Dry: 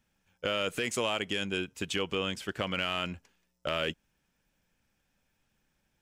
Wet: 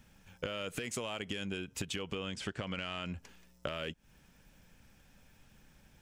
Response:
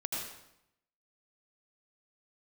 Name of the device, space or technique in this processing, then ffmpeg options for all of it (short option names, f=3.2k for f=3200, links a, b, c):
serial compression, peaks first: -filter_complex "[0:a]lowshelf=f=250:g=5.5,acompressor=threshold=-39dB:ratio=6,acompressor=threshold=-48dB:ratio=3,asettb=1/sr,asplit=3[a][b][c];[a]atrim=end=2.254[d];[b]atrim=start=2.25:end=3.1,asetpts=PTS-STARTPTS,afade=t=in:d=0.004:c=qsin,afade=t=out:st=0.846:d=0.004:c=qsin,lowpass=f=9.2k:w=0.5412,lowpass=f=9.2k:w=1.3066[e];[c]atrim=start=3.096[f];[d][e]acrossfade=d=0.004:c1=hsin:c2=qsin[g];[g][f]acrossfade=d=0.004:c1=qsin:c2=hsin,equalizer=f=340:w=6.9:g=-2.5,volume=11dB"